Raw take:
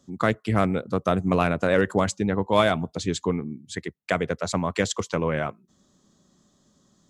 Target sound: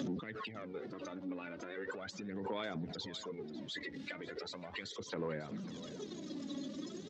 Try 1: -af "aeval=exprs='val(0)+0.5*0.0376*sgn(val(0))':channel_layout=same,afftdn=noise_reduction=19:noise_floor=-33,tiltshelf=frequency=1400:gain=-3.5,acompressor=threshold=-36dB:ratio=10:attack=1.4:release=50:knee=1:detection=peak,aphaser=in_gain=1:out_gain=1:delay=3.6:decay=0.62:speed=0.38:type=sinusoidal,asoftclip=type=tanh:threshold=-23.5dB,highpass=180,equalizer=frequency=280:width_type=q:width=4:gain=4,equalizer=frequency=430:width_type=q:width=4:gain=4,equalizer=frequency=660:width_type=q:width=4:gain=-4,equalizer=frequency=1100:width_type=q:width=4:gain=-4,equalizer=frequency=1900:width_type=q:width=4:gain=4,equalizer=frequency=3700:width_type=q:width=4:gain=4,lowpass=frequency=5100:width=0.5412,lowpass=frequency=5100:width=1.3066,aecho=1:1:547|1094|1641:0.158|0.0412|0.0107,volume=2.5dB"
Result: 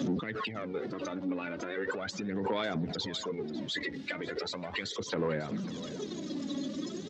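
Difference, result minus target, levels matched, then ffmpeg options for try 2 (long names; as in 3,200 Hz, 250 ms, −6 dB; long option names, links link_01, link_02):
downward compressor: peak gain reduction −8.5 dB
-af "aeval=exprs='val(0)+0.5*0.0376*sgn(val(0))':channel_layout=same,afftdn=noise_reduction=19:noise_floor=-33,tiltshelf=frequency=1400:gain=-3.5,acompressor=threshold=-45.5dB:ratio=10:attack=1.4:release=50:knee=1:detection=peak,aphaser=in_gain=1:out_gain=1:delay=3.6:decay=0.62:speed=0.38:type=sinusoidal,asoftclip=type=tanh:threshold=-23.5dB,highpass=180,equalizer=frequency=280:width_type=q:width=4:gain=4,equalizer=frequency=430:width_type=q:width=4:gain=4,equalizer=frequency=660:width_type=q:width=4:gain=-4,equalizer=frequency=1100:width_type=q:width=4:gain=-4,equalizer=frequency=1900:width_type=q:width=4:gain=4,equalizer=frequency=3700:width_type=q:width=4:gain=4,lowpass=frequency=5100:width=0.5412,lowpass=frequency=5100:width=1.3066,aecho=1:1:547|1094|1641:0.158|0.0412|0.0107,volume=2.5dB"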